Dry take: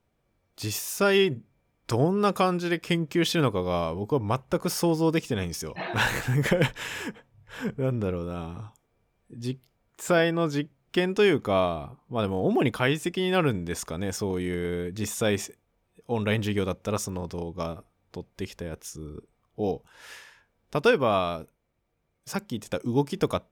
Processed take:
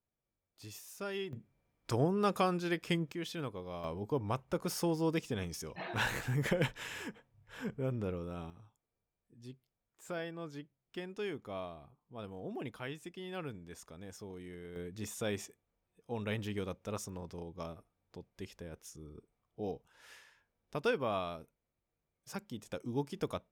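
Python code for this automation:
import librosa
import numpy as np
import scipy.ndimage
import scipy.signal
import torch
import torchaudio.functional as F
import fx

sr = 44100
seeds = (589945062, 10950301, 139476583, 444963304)

y = fx.gain(x, sr, db=fx.steps((0.0, -18.5), (1.33, -7.5), (3.12, -16.5), (3.84, -9.0), (8.5, -18.5), (14.76, -11.5)))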